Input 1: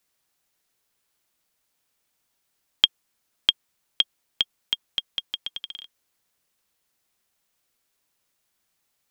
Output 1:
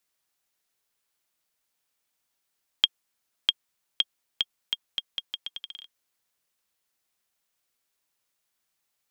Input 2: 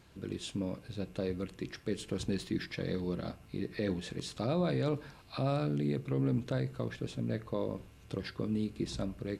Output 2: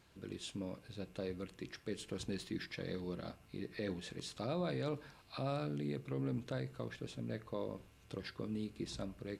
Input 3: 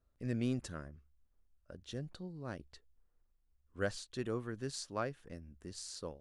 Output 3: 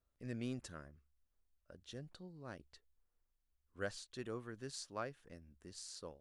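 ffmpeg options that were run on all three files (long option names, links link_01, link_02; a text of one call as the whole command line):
ffmpeg -i in.wav -af "lowshelf=frequency=440:gain=-4.5,volume=-4dB" out.wav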